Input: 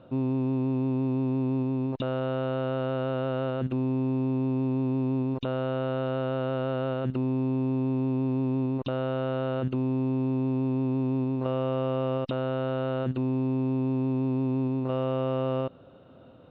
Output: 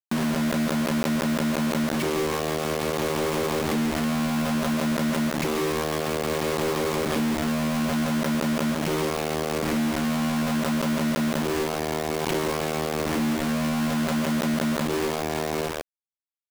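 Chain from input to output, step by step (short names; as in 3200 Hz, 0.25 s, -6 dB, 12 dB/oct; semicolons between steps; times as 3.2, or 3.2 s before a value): compressor 10:1, threshold -31 dBFS, peak gain reduction 8 dB; formant shift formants +5 st; doubler 39 ms -9 dB; echo 0.179 s -19 dB; pitch shift -9 st; HPF 180 Hz 24 dB/oct; feedback echo 0.14 s, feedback 40%, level -6 dB; companded quantiser 2-bit; backwards sustainer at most 20 dB/s; gain +2.5 dB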